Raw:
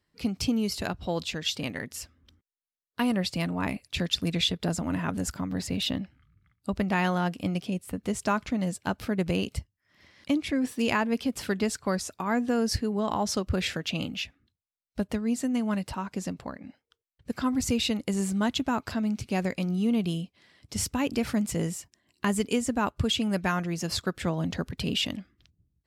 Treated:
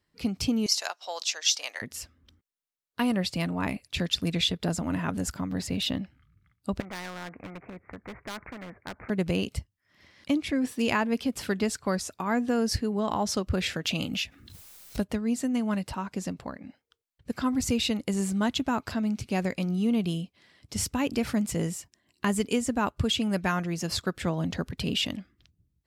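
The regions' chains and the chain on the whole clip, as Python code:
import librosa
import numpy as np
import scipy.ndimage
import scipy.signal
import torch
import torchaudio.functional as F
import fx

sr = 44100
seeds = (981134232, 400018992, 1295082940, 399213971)

y = fx.chain(x, sr, fx.highpass(hz=640.0, slope=24),
    fx.peak_eq(hz=5900.0, db=13.5, octaves=0.69), at=(0.66, 1.82))
y = fx.chain(y, sr, fx.steep_lowpass(hz=2200.0, slope=96),
    fx.clip_hard(threshold_db=-23.0),
    fx.spectral_comp(ratio=2.0), at=(6.8, 9.1))
y = fx.chain(y, sr, fx.high_shelf(hz=4900.0, db=7.0),
    fx.pre_swell(db_per_s=49.0), at=(13.85, 15.05))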